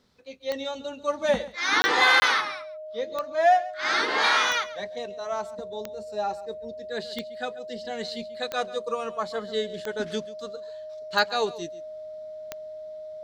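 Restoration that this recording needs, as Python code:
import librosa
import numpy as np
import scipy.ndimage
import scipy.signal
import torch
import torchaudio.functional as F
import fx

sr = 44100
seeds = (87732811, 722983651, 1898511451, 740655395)

y = fx.fix_declick_ar(x, sr, threshold=10.0)
y = fx.notch(y, sr, hz=620.0, q=30.0)
y = fx.fix_interpolate(y, sr, at_s=(1.82, 2.2), length_ms=20.0)
y = fx.fix_echo_inverse(y, sr, delay_ms=137, level_db=-17.5)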